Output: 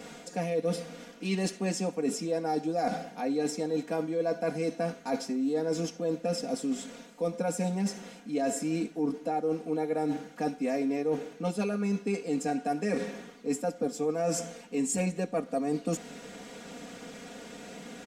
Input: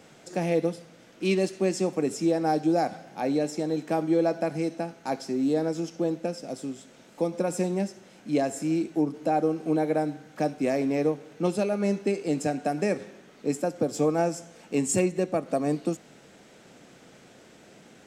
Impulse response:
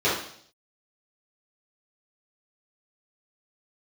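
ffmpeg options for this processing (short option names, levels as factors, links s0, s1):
-af "aecho=1:1:4.2:0.99,areverse,acompressor=threshold=0.0251:ratio=6,areverse,volume=1.68"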